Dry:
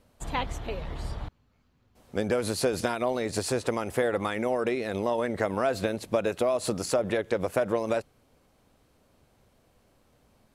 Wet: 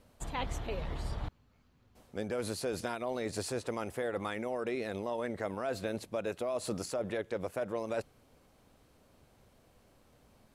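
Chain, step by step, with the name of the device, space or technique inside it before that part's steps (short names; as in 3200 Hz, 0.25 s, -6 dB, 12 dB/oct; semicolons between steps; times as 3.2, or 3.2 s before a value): compression on the reversed sound (reverse; compressor, threshold -32 dBFS, peak gain reduction 12.5 dB; reverse)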